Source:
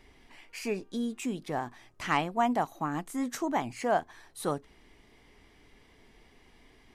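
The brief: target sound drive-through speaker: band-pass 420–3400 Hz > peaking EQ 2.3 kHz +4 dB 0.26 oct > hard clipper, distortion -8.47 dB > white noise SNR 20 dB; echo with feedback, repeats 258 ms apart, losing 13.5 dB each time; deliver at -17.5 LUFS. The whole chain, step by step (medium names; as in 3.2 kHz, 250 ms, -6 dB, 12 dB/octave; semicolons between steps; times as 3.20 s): band-pass 420–3400 Hz; peaking EQ 2.3 kHz +4 dB 0.26 oct; feedback delay 258 ms, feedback 21%, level -13.5 dB; hard clipper -26.5 dBFS; white noise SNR 20 dB; trim +19 dB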